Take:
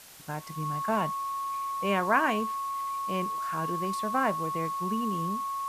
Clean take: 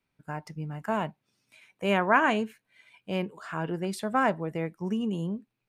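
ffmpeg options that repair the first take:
-af "bandreject=f=1.1k:w=30,afwtdn=0.0035,asetnsamples=n=441:p=0,asendcmd='1.56 volume volume 3dB',volume=0dB"

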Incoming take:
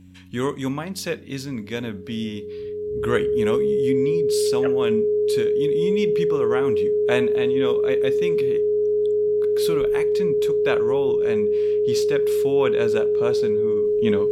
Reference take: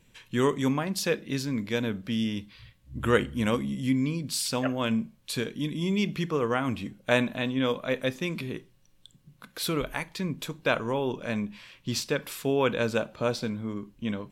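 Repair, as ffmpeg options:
-af "bandreject=f=91.7:t=h:w=4,bandreject=f=183.4:t=h:w=4,bandreject=f=275.1:t=h:w=4,bandreject=f=420:w=30,asetnsamples=n=441:p=0,asendcmd='13.84 volume volume -7dB',volume=0dB"

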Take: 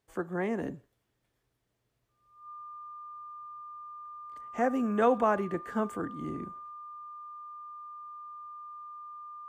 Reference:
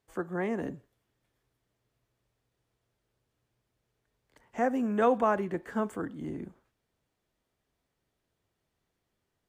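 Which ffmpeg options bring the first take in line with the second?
-af "bandreject=f=1.2k:w=30"

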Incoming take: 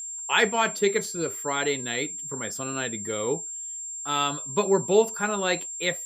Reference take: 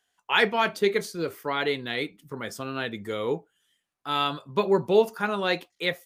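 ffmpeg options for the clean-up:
-af "bandreject=f=7.4k:w=30"

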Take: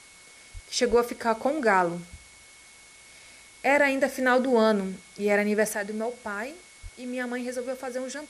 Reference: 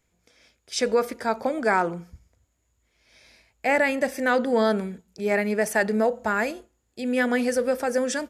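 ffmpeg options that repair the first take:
-filter_complex "[0:a]bandreject=f=2.2k:w=30,asplit=3[a][b][c];[a]afade=t=out:st=0.53:d=0.02[d];[b]highpass=f=140:w=0.5412,highpass=f=140:w=1.3066,afade=t=in:st=0.53:d=0.02,afade=t=out:st=0.65:d=0.02[e];[c]afade=t=in:st=0.65:d=0.02[f];[d][e][f]amix=inputs=3:normalize=0,asplit=3[g][h][i];[g]afade=t=out:st=0.89:d=0.02[j];[h]highpass=f=140:w=0.5412,highpass=f=140:w=1.3066,afade=t=in:st=0.89:d=0.02,afade=t=out:st=1.01:d=0.02[k];[i]afade=t=in:st=1.01:d=0.02[l];[j][k][l]amix=inputs=3:normalize=0,asplit=3[m][n][o];[m]afade=t=out:st=6.82:d=0.02[p];[n]highpass=f=140:w=0.5412,highpass=f=140:w=1.3066,afade=t=in:st=6.82:d=0.02,afade=t=out:st=6.94:d=0.02[q];[o]afade=t=in:st=6.94:d=0.02[r];[p][q][r]amix=inputs=3:normalize=0,afwtdn=0.0032,asetnsamples=n=441:p=0,asendcmd='5.75 volume volume 8.5dB',volume=0dB"

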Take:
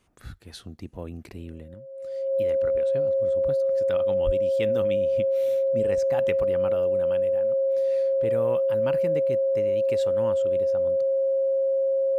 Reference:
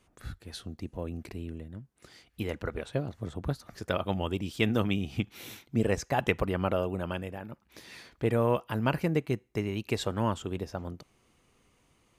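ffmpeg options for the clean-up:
-filter_complex "[0:a]bandreject=f=540:w=30,asplit=3[a][b][c];[a]afade=t=out:st=4.25:d=0.02[d];[b]highpass=f=140:w=0.5412,highpass=f=140:w=1.3066,afade=t=in:st=4.25:d=0.02,afade=t=out:st=4.37:d=0.02[e];[c]afade=t=in:st=4.37:d=0.02[f];[d][e][f]amix=inputs=3:normalize=0,asetnsamples=n=441:p=0,asendcmd='1.74 volume volume 5.5dB',volume=0dB"

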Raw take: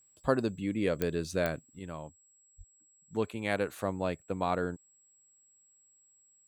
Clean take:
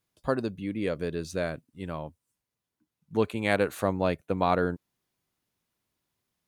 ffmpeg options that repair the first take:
-filter_complex "[0:a]adeclick=t=4,bandreject=f=7.7k:w=30,asplit=3[a][b][c];[a]afade=t=out:st=2.57:d=0.02[d];[b]highpass=f=140:w=0.5412,highpass=f=140:w=1.3066,afade=t=in:st=2.57:d=0.02,afade=t=out:st=2.69:d=0.02[e];[c]afade=t=in:st=2.69:d=0.02[f];[d][e][f]amix=inputs=3:normalize=0,asetnsamples=n=441:p=0,asendcmd='1.79 volume volume 6dB',volume=0dB"

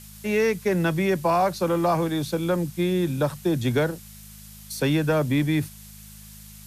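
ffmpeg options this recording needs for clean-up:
-af "bandreject=f=52.3:t=h:w=4,bandreject=f=104.6:t=h:w=4,bandreject=f=156.9:t=h:w=4,bandreject=f=209.2:t=h:w=4,afftdn=nr=25:nf=-44"

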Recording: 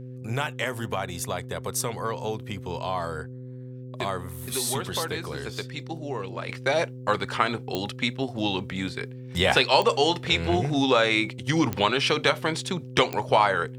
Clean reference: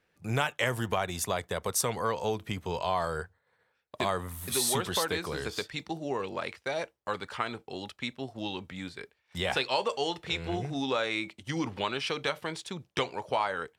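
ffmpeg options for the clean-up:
-af "adeclick=t=4,bandreject=f=127:t=h:w=4,bandreject=f=254:t=h:w=4,bandreject=f=381:t=h:w=4,bandreject=f=508:t=h:w=4,asetnsamples=n=441:p=0,asendcmd='6.49 volume volume -9dB',volume=0dB"

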